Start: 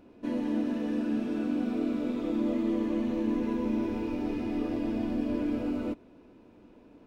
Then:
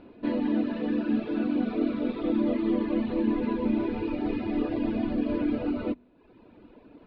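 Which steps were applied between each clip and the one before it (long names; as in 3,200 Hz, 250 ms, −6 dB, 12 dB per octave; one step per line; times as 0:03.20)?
elliptic low-pass filter 4,300 Hz, stop band 60 dB
hum removal 48.92 Hz, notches 5
reverb reduction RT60 0.91 s
level +6.5 dB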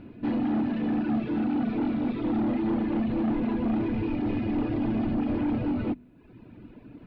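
octave-band graphic EQ 125/500/1,000/4,000 Hz +9/−8/−6/−7 dB
soft clipping −28.5 dBFS, distortion −10 dB
level +6 dB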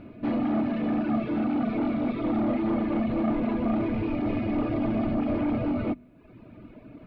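hollow resonant body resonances 630/1,200/2,200 Hz, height 12 dB, ringing for 45 ms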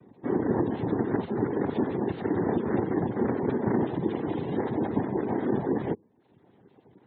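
cochlear-implant simulation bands 6
gate on every frequency bin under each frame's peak −30 dB strong
expander for the loud parts 1.5 to 1, over −43 dBFS
level +1 dB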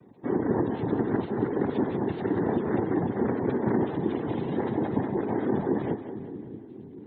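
echo with a time of its own for lows and highs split 380 Hz, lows 628 ms, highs 186 ms, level −10.5 dB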